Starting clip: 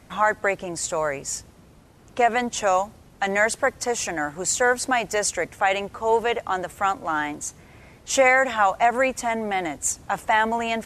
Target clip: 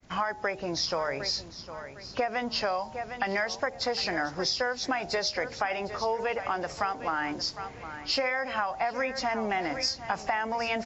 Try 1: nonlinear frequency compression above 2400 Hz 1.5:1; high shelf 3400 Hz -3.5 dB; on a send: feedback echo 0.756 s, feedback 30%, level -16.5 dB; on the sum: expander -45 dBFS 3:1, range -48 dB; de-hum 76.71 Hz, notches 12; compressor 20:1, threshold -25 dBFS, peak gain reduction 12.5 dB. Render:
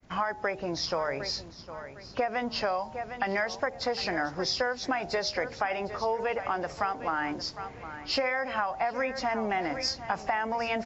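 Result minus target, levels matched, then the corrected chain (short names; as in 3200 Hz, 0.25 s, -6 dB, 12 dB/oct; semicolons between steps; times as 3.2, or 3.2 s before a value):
8000 Hz band -3.0 dB
nonlinear frequency compression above 2400 Hz 1.5:1; high shelf 3400 Hz +3.5 dB; on a send: feedback echo 0.756 s, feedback 30%, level -16.5 dB; on the sum: expander -45 dBFS 3:1, range -48 dB; de-hum 76.71 Hz, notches 12; compressor 20:1, threshold -25 dBFS, peak gain reduction 13.5 dB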